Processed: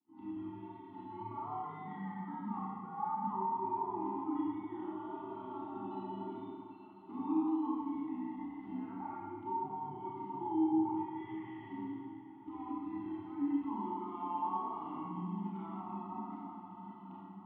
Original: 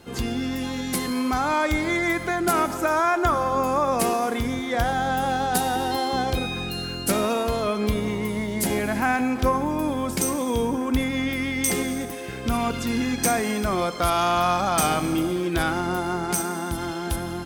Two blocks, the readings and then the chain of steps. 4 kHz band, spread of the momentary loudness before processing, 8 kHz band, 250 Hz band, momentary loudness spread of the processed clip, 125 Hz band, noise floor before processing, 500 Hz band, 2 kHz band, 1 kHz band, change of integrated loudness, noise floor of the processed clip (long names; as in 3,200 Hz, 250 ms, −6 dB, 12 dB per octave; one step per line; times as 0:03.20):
below −35 dB, 6 LU, below −40 dB, −12.0 dB, 13 LU, −19.5 dB, −32 dBFS, −21.0 dB, −32.5 dB, −14.5 dB, −15.5 dB, −52 dBFS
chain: downward expander −20 dBFS
reverb reduction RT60 1.6 s
downward compressor, threshold −32 dBFS, peak gain reduction 14 dB
brickwall limiter −29 dBFS, peak gain reduction 11.5 dB
phaser with its sweep stopped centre 670 Hz, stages 6
pitch vibrato 1.8 Hz 34 cents
single-sideband voice off tune −150 Hz 230–3,000 Hz
formant filter u
feedback delay with all-pass diffusion 779 ms, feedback 59%, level −16 dB
four-comb reverb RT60 1.6 s, combs from 28 ms, DRR −6 dB
level +7.5 dB